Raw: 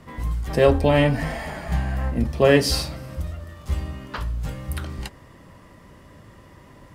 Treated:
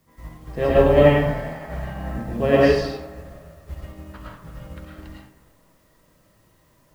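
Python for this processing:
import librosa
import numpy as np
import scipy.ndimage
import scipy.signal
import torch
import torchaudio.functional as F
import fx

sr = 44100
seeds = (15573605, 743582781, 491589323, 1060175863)

y = scipy.signal.sosfilt(scipy.signal.butter(2, 5400.0, 'lowpass', fs=sr, output='sos'), x)
y = fx.high_shelf(y, sr, hz=3900.0, db=-11.0)
y = fx.comb_fb(y, sr, f0_hz=160.0, decay_s=0.68, harmonics='all', damping=0.0, mix_pct=60)
y = fx.echo_wet_bandpass(y, sr, ms=243, feedback_pct=59, hz=960.0, wet_db=-13.0)
y = fx.quant_dither(y, sr, seeds[0], bits=10, dither='triangular')
y = fx.rev_freeverb(y, sr, rt60_s=0.85, hf_ratio=0.5, predelay_ms=70, drr_db=-5.5)
y = fx.upward_expand(y, sr, threshold_db=-45.0, expansion=1.5)
y = y * 10.0 ** (4.5 / 20.0)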